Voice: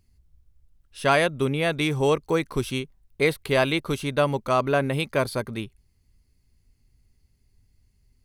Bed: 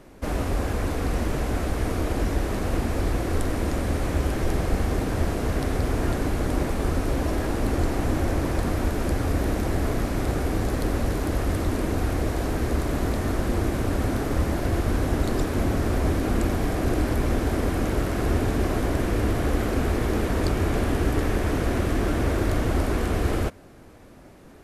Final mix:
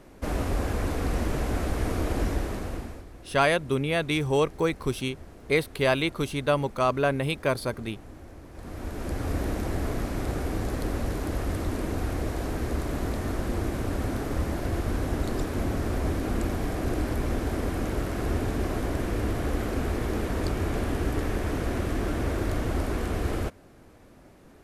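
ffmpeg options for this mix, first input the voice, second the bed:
-filter_complex "[0:a]adelay=2300,volume=0.794[s0];[1:a]volume=5.62,afade=t=out:st=2.24:d=0.81:silence=0.105925,afade=t=in:st=8.52:d=0.81:silence=0.141254[s1];[s0][s1]amix=inputs=2:normalize=0"

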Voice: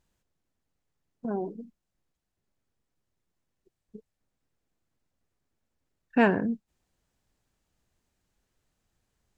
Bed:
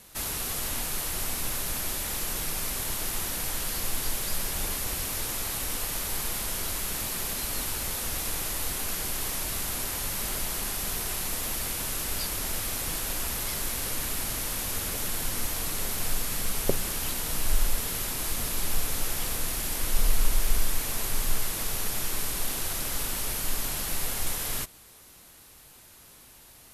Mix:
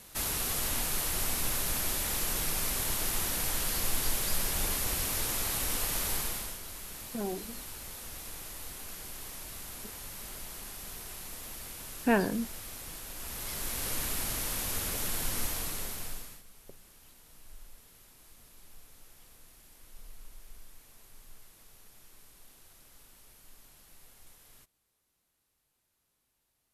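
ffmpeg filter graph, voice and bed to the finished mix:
-filter_complex "[0:a]adelay=5900,volume=0.631[s0];[1:a]volume=2.82,afade=t=out:st=6.1:d=0.49:silence=0.266073,afade=t=in:st=13.14:d=0.79:silence=0.334965,afade=t=out:st=15.43:d=1:silence=0.0630957[s1];[s0][s1]amix=inputs=2:normalize=0"

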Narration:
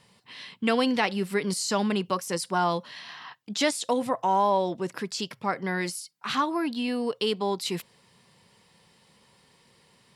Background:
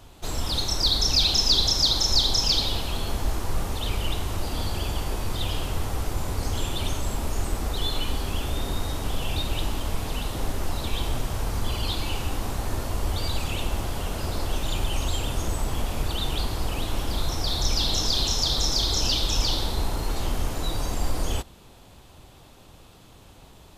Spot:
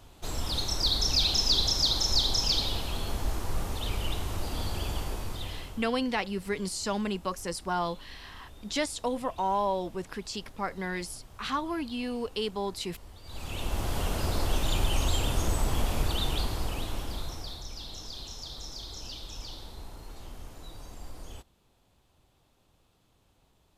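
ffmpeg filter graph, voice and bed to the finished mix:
-filter_complex "[0:a]adelay=5150,volume=0.562[s0];[1:a]volume=7.5,afade=t=out:st=4.97:d=0.95:silence=0.125893,afade=t=in:st=13.24:d=0.75:silence=0.0794328,afade=t=out:st=15.93:d=1.72:silence=0.141254[s1];[s0][s1]amix=inputs=2:normalize=0"

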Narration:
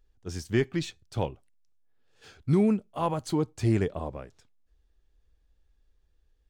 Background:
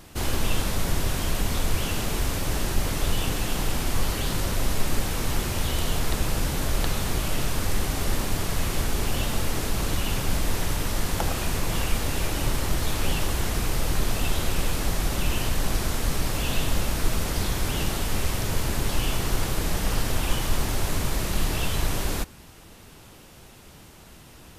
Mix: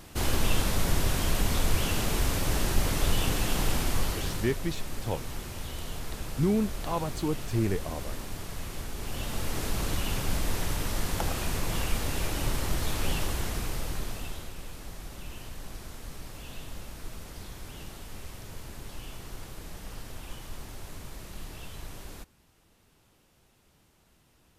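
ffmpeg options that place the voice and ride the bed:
-filter_complex "[0:a]adelay=3900,volume=0.708[s0];[1:a]volume=2.11,afade=t=out:st=3.73:d=0.88:silence=0.298538,afade=t=in:st=8.96:d=0.72:silence=0.421697,afade=t=out:st=13.16:d=1.37:silence=0.237137[s1];[s0][s1]amix=inputs=2:normalize=0"

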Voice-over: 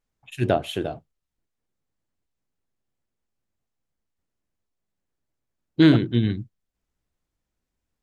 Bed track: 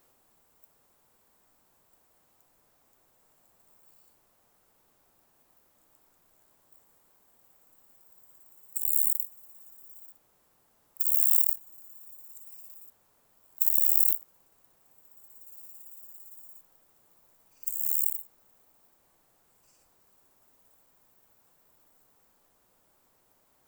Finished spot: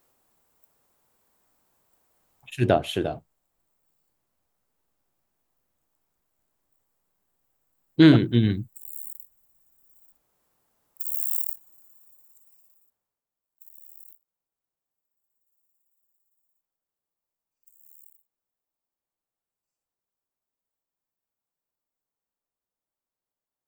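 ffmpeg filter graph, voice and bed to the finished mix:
-filter_complex "[0:a]adelay=2200,volume=1.12[s0];[1:a]volume=2,afade=t=out:st=2.38:d=0.41:silence=0.298538,afade=t=in:st=9.68:d=0.75:silence=0.375837,afade=t=out:st=11.66:d=1.55:silence=0.0841395[s1];[s0][s1]amix=inputs=2:normalize=0"

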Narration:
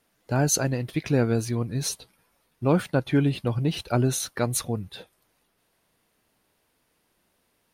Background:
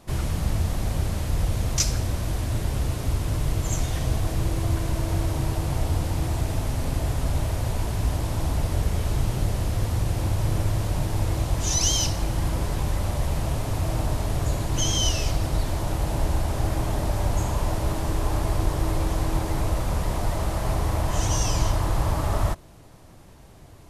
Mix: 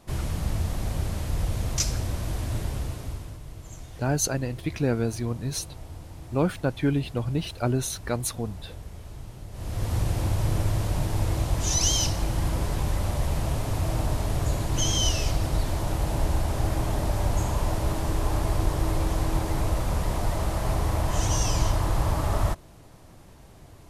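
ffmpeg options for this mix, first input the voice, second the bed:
-filter_complex "[0:a]adelay=3700,volume=0.75[s0];[1:a]volume=4.22,afade=t=out:st=2.58:d=0.81:silence=0.211349,afade=t=in:st=9.51:d=0.45:silence=0.16788[s1];[s0][s1]amix=inputs=2:normalize=0"

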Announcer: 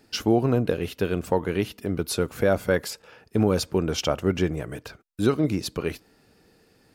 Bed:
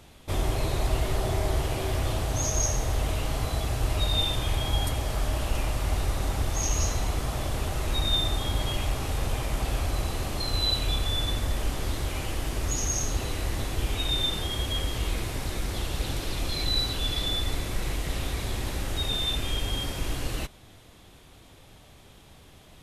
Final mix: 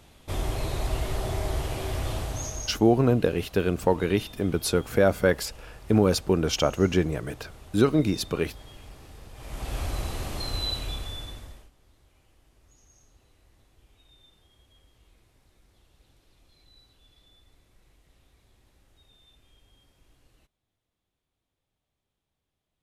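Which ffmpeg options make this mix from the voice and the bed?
-filter_complex "[0:a]adelay=2550,volume=1.12[s0];[1:a]volume=4.73,afade=t=out:st=2.18:d=0.63:silence=0.158489,afade=t=in:st=9.34:d=0.48:silence=0.158489,afade=t=out:st=10.44:d=1.26:silence=0.0334965[s1];[s0][s1]amix=inputs=2:normalize=0"

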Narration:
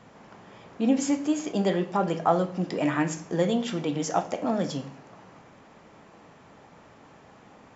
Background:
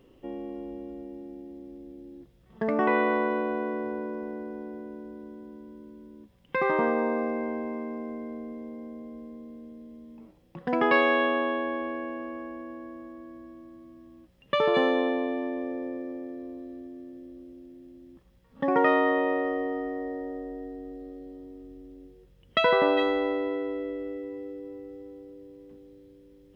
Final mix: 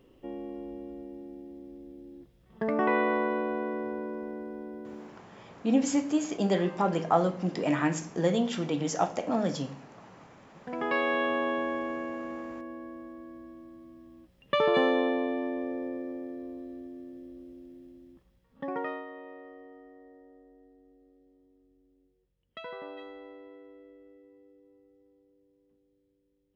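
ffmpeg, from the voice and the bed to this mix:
-filter_complex "[0:a]adelay=4850,volume=0.841[s0];[1:a]volume=7.94,afade=t=out:st=4.97:d=0.26:silence=0.112202,afade=t=in:st=10.41:d=1.16:silence=0.1,afade=t=out:st=17.76:d=1.3:silence=0.112202[s1];[s0][s1]amix=inputs=2:normalize=0"

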